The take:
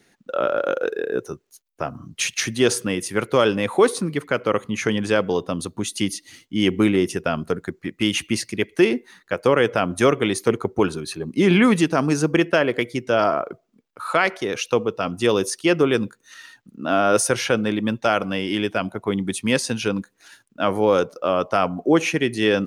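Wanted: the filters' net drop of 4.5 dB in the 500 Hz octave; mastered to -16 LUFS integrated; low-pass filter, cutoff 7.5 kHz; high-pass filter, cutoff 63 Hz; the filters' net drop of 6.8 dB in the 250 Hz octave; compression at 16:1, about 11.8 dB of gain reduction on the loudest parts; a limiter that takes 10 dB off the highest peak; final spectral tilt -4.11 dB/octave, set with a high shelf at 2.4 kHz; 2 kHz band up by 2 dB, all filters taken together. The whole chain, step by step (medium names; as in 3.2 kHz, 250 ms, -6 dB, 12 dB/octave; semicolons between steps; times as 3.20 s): high-pass 63 Hz; low-pass 7.5 kHz; peaking EQ 250 Hz -8.5 dB; peaking EQ 500 Hz -3 dB; peaking EQ 2 kHz +5.5 dB; treble shelf 2.4 kHz -5 dB; compression 16:1, threshold -26 dBFS; trim +18 dB; peak limiter -2 dBFS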